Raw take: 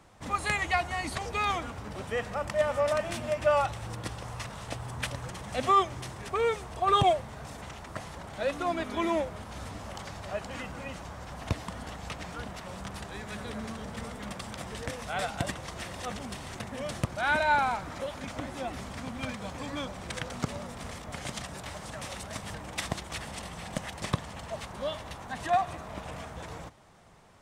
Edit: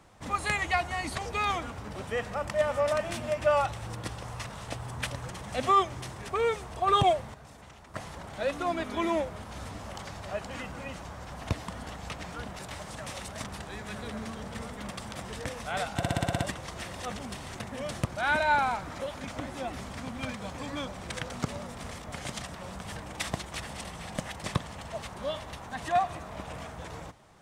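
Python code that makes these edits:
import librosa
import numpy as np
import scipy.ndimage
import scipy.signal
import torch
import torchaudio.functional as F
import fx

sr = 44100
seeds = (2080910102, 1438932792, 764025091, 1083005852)

y = fx.edit(x, sr, fx.clip_gain(start_s=7.34, length_s=0.6, db=-8.0),
    fx.swap(start_s=12.59, length_s=0.27, other_s=21.54, other_length_s=0.85),
    fx.stutter(start_s=15.39, slice_s=0.06, count=8), tone=tone)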